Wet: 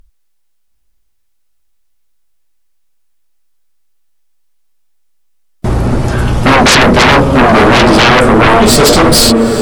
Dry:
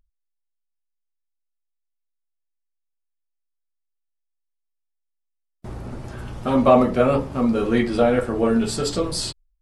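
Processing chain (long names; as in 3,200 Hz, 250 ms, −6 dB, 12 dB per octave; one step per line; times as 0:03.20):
stylus tracing distortion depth 0.024 ms
feedback delay with all-pass diffusion 919 ms, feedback 40%, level −12 dB
sine wavefolder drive 19 dB, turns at −2.5 dBFS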